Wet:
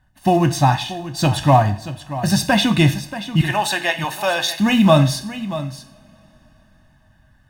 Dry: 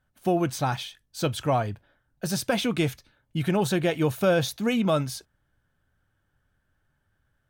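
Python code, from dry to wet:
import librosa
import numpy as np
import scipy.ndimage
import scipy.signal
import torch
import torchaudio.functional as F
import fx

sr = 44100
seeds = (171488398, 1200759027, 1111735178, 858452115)

p1 = fx.highpass(x, sr, hz=710.0, slope=12, at=(3.41, 4.59))
p2 = p1 + 10.0 ** (-13.5 / 20.0) * np.pad(p1, (int(632 * sr / 1000.0), 0))[:len(p1)]
p3 = fx.quant_float(p2, sr, bits=2)
p4 = p2 + (p3 * librosa.db_to_amplitude(-7.0))
p5 = fx.high_shelf(p4, sr, hz=8800.0, db=-8.0)
p6 = p5 + 0.87 * np.pad(p5, (int(1.1 * sr / 1000.0), 0))[:len(p5)]
p7 = fx.rev_double_slope(p6, sr, seeds[0], early_s=0.48, late_s=4.5, knee_db=-28, drr_db=8.0)
p8 = fx.rider(p7, sr, range_db=4, speed_s=2.0)
y = p8 * librosa.db_to_amplitude(4.5)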